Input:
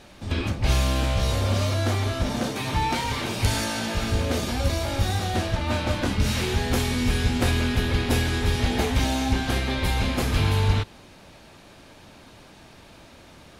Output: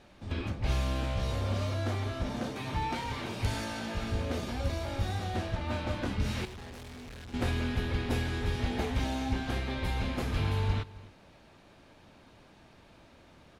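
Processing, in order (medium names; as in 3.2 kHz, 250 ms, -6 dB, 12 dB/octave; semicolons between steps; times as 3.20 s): treble shelf 4.7 kHz -9 dB; 6.45–7.34 s: valve stage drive 36 dB, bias 0.7; echo from a far wall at 46 m, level -20 dB; trim -8 dB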